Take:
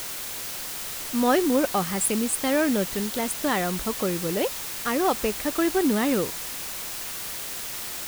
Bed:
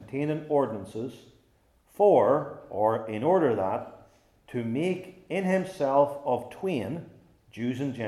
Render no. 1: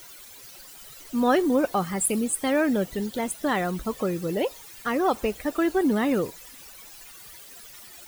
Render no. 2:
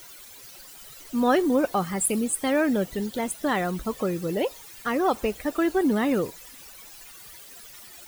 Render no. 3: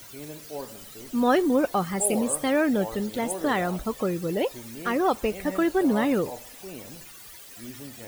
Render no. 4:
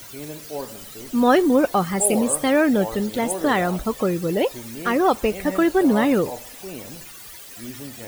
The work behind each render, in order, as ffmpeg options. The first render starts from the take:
-af "afftdn=nr=16:nf=-34"
-af anull
-filter_complex "[1:a]volume=0.251[s0];[0:a][s0]amix=inputs=2:normalize=0"
-af "volume=1.78"

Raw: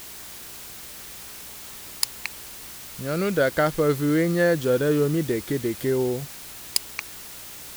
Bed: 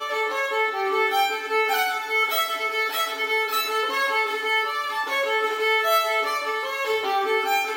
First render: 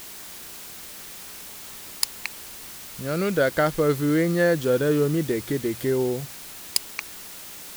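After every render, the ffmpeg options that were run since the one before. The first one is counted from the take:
-af "bandreject=f=60:t=h:w=4,bandreject=f=120:t=h:w=4"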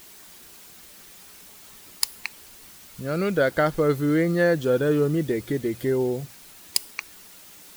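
-af "afftdn=nr=8:nf=-40"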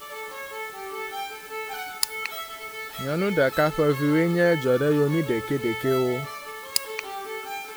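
-filter_complex "[1:a]volume=0.266[s0];[0:a][s0]amix=inputs=2:normalize=0"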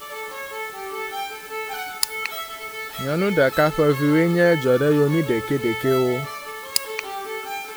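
-af "volume=1.5,alimiter=limit=0.794:level=0:latency=1"

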